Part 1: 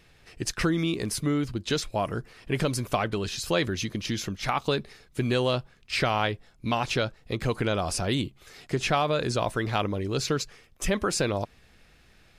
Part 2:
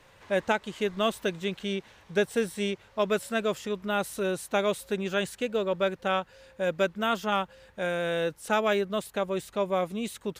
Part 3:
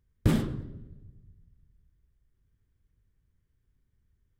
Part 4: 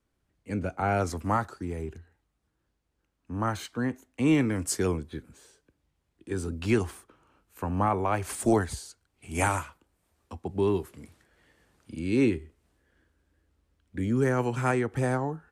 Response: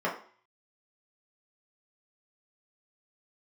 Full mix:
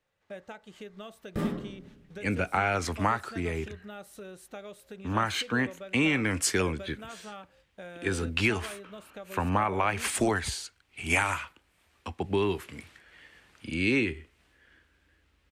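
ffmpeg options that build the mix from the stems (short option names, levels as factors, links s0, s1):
-filter_complex "[1:a]agate=range=0.178:threshold=0.00398:ratio=16:detection=peak,bandreject=f=1000:w=9.4,acompressor=threshold=0.0178:ratio=4,volume=0.398,asplit=2[s0][s1];[s1]volume=0.0668[s2];[2:a]adelay=1100,volume=0.266,asplit=2[s3][s4];[s4]volume=0.668[s5];[3:a]equalizer=f=2500:w=0.64:g=13.5,acompressor=threshold=0.0708:ratio=6,adelay=1750,volume=1.12[s6];[4:a]atrim=start_sample=2205[s7];[s2][s5]amix=inputs=2:normalize=0[s8];[s8][s7]afir=irnorm=-1:irlink=0[s9];[s0][s3][s6][s9]amix=inputs=4:normalize=0"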